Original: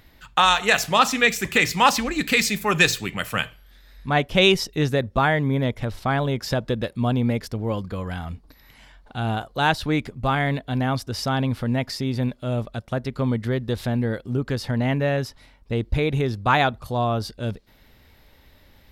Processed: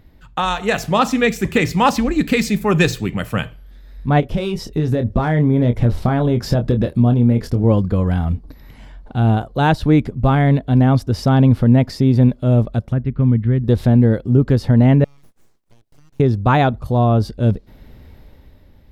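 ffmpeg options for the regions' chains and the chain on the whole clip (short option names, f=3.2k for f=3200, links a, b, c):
-filter_complex "[0:a]asettb=1/sr,asplit=3[a][b][c];[a]atrim=end=4.204[d];[b]atrim=start=4.2:end=7.64,asetpts=PTS-STARTPTS,afade=t=in:d=0.004:c=qsin,afade=t=out:st=3.436:d=0.004:c=qsin,acompressor=threshold=-25dB:ratio=4:attack=3.2:release=140:knee=1:detection=peak,volume=20dB,asoftclip=hard,volume=-20dB,asplit=2[e][f];[f]adelay=25,volume=-8dB[g];[e][g]amix=inputs=2:normalize=0,atrim=end_sample=151704[h];[c]atrim=start=7.636[i];[d][h]acrossfade=d=0.004:c1=hsin:c2=qsin[j];[j][i]acrossfade=d=0.004:c1=qsin:c2=hsin,asettb=1/sr,asplit=3[k][l][m];[k]atrim=end=12.924[n];[l]atrim=start=12.92:end=13.64,asetpts=PTS-STARTPTS,afade=t=in:d=0.004:c=qsin,afade=t=out:st=0.716:d=0.004:c=qsin,lowpass=f=2.7k:w=0.5412,lowpass=f=2.7k:w=1.3066,equalizer=f=650:w=0.6:g=-12.5[o];[m]atrim=start=13.636[p];[n][o]acrossfade=d=0.004:c1=hsin:c2=qsin[q];[q][p]acrossfade=d=0.004:c1=qsin:c2=hsin,asettb=1/sr,asplit=3[r][s][t];[r]atrim=end=15.044[u];[s]atrim=start=15.04:end=16.2,asetpts=PTS-STARTPTS,afade=t=in:d=0.004:c=qsin,afade=t=out:st=1.156:d=0.004:c=qsin,aderivative,aeval=exprs='abs(val(0))':c=same,acompressor=threshold=-54dB:ratio=5:attack=3.2:release=140:knee=1:detection=peak[v];[t]atrim=start=16.196[w];[u][v]acrossfade=d=0.004:c1=hsin:c2=qsin[x];[x][w]acrossfade=d=0.004:c1=qsin:c2=hsin,tiltshelf=f=760:g=7.5,dynaudnorm=f=110:g=13:m=11.5dB,volume=-1dB"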